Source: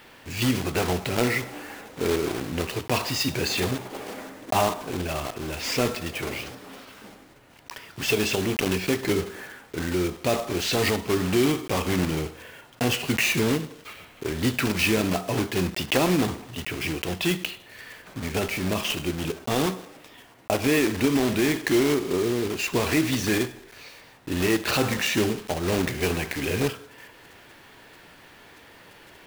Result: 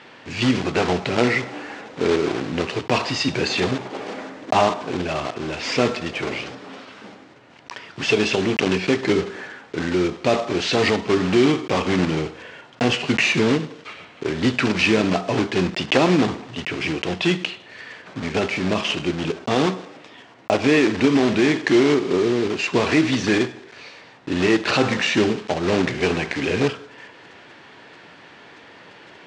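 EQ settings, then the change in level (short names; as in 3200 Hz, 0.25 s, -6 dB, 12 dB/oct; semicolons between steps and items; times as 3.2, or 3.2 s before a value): HPF 130 Hz 12 dB/oct; Bessel low-pass 4600 Hz, order 6; +5.5 dB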